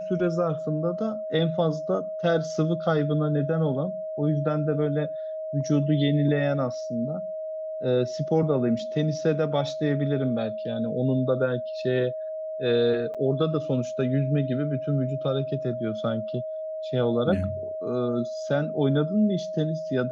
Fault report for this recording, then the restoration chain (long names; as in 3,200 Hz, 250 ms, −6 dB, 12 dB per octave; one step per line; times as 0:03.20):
whistle 630 Hz −30 dBFS
0:13.14–0:13.15: drop-out 6.7 ms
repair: notch filter 630 Hz, Q 30
repair the gap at 0:13.14, 6.7 ms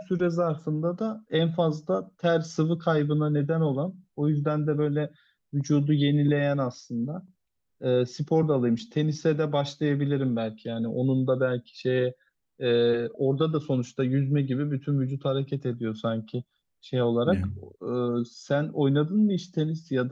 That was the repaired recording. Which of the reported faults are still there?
none of them is left